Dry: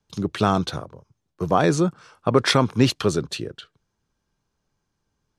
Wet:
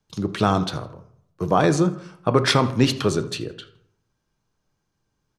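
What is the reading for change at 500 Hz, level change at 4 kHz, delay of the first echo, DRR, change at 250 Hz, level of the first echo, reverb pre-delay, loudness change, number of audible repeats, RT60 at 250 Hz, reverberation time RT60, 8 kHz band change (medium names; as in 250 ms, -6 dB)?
0.0 dB, +0.5 dB, 81 ms, 8.5 dB, +0.5 dB, -20.5 dB, 6 ms, +0.5 dB, 1, 0.70 s, 0.70 s, 0.0 dB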